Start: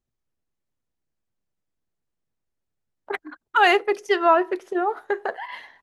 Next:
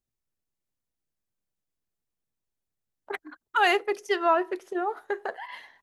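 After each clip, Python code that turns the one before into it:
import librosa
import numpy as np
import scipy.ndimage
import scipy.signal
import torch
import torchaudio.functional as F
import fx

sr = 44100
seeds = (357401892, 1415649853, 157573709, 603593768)

y = fx.high_shelf(x, sr, hz=5600.0, db=7.0)
y = y * librosa.db_to_amplitude(-5.5)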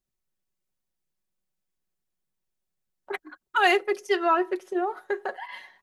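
y = x + 0.53 * np.pad(x, (int(5.4 * sr / 1000.0), 0))[:len(x)]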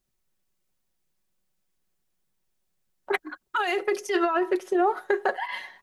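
y = fx.over_compress(x, sr, threshold_db=-26.0, ratio=-1.0)
y = y * librosa.db_to_amplitude(3.5)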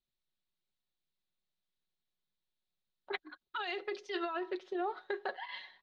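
y = fx.ladder_lowpass(x, sr, hz=4300.0, resonance_pct=65)
y = y * librosa.db_to_amplitude(-2.5)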